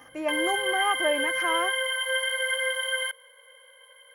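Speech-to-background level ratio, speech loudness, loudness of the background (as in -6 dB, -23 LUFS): -3.5 dB, -29.5 LUFS, -26.0 LUFS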